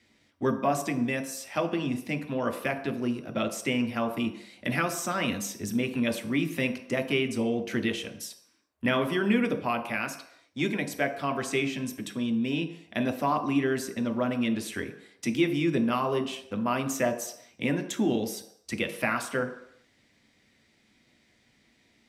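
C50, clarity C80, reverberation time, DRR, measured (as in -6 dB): 11.0 dB, 13.0 dB, not exponential, 4.0 dB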